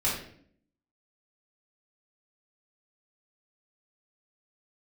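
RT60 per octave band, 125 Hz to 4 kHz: 0.75, 0.85, 0.65, 0.50, 0.55, 0.45 s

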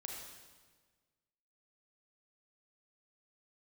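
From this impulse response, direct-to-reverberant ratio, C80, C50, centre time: -0.5 dB, 3.0 dB, 1.0 dB, 69 ms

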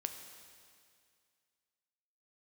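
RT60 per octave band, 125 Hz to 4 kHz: 2.2, 2.2, 2.2, 2.2, 2.2, 2.2 s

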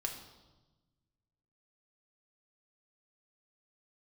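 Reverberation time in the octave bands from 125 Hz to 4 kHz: 2.1, 1.7, 1.2, 1.1, 0.85, 1.0 s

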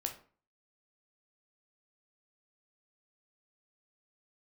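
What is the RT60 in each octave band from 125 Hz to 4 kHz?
0.50, 0.50, 0.40, 0.45, 0.35, 0.30 s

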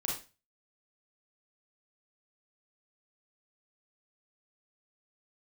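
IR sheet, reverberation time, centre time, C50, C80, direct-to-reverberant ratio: 0.30 s, 38 ms, 3.5 dB, 10.5 dB, -3.0 dB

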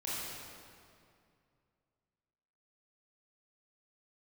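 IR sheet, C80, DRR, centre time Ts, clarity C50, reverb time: -2.0 dB, -9.0 dB, 0.161 s, -4.5 dB, 2.4 s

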